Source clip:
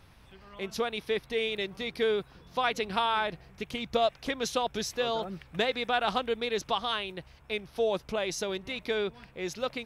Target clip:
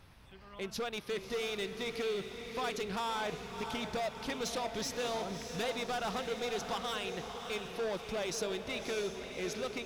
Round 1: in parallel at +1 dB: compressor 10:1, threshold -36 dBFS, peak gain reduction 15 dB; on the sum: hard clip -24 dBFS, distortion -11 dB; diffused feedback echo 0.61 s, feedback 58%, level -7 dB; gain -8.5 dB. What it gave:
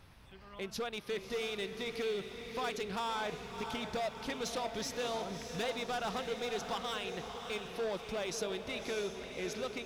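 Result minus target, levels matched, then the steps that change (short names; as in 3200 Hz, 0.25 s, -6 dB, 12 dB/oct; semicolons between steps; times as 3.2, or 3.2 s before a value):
compressor: peak gain reduction +6.5 dB
change: compressor 10:1, threshold -29 dBFS, peak gain reduction 8.5 dB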